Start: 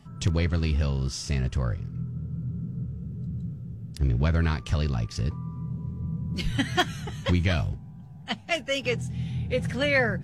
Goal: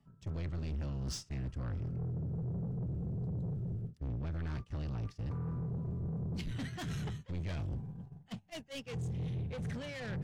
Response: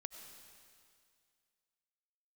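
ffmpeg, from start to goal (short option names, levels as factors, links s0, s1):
-filter_complex "[0:a]highshelf=f=2400:g=-6.5,areverse,acompressor=threshold=0.0251:ratio=16,areverse,asoftclip=type=tanh:threshold=0.0119,acrossover=split=230|3000[s0][s1][s2];[s1]acompressor=threshold=0.00224:ratio=1.5[s3];[s0][s3][s2]amix=inputs=3:normalize=0,agate=range=0.1:threshold=0.00631:ratio=16:detection=peak,volume=1.68"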